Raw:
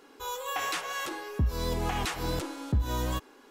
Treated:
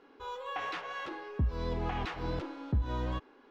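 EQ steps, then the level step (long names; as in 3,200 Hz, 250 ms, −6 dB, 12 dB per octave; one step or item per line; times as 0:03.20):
high-frequency loss of the air 260 metres
−3.0 dB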